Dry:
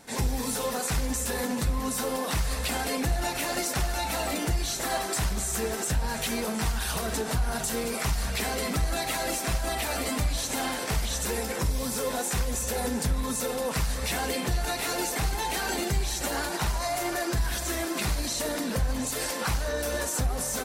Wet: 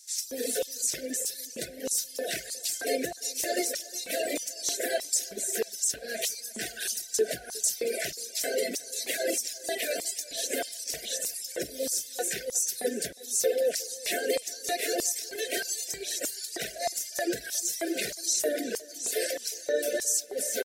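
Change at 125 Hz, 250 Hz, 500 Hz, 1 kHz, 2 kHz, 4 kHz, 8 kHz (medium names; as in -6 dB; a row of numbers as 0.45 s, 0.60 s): -25.0 dB, -7.0 dB, +1.5 dB, -9.5 dB, -3.5 dB, -1.0 dB, +2.5 dB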